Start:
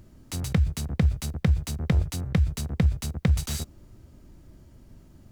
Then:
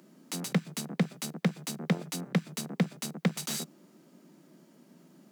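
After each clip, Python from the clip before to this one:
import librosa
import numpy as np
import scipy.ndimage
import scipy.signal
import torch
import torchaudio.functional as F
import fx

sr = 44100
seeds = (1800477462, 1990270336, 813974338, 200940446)

y = scipy.signal.sosfilt(scipy.signal.butter(12, 160.0, 'highpass', fs=sr, output='sos'), x)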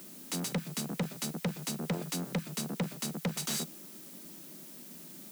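y = fx.dmg_noise_colour(x, sr, seeds[0], colour='blue', level_db=-53.0)
y = 10.0 ** (-30.5 / 20.0) * np.tanh(y / 10.0 ** (-30.5 / 20.0))
y = y * 10.0 ** (3.0 / 20.0)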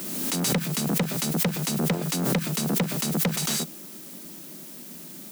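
y = fx.pre_swell(x, sr, db_per_s=28.0)
y = y * 10.0 ** (7.0 / 20.0)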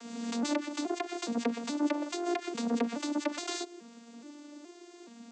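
y = fx.vocoder_arp(x, sr, chord='major triad', root=58, every_ms=422)
y = scipy.signal.sosfilt(scipy.signal.bessel(2, 400.0, 'highpass', norm='mag', fs=sr, output='sos'), y)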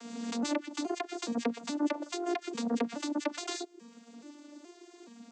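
y = fx.dereverb_blind(x, sr, rt60_s=0.62)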